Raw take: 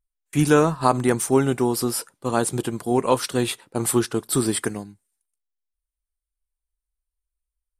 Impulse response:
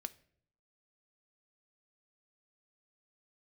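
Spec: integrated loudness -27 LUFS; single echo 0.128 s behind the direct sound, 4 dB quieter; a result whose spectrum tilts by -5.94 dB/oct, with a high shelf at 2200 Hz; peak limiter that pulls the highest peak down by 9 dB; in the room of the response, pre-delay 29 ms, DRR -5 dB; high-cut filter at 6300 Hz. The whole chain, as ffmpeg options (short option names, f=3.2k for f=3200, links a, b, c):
-filter_complex "[0:a]lowpass=6.3k,highshelf=f=2.2k:g=-4,alimiter=limit=-12.5dB:level=0:latency=1,aecho=1:1:128:0.631,asplit=2[a][b];[1:a]atrim=start_sample=2205,adelay=29[c];[b][c]afir=irnorm=-1:irlink=0,volume=8dB[d];[a][d]amix=inputs=2:normalize=0,volume=-9dB"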